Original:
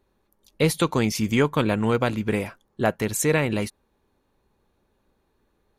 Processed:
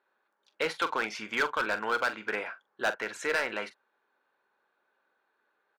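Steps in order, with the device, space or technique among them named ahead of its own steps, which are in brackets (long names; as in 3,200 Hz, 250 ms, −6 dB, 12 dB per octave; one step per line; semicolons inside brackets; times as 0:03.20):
megaphone (band-pass filter 680–3,000 Hz; parametric band 1,500 Hz +11 dB 0.3 octaves; hard clipping −20 dBFS, distortion −9 dB; double-tracking delay 43 ms −12.5 dB)
level −1.5 dB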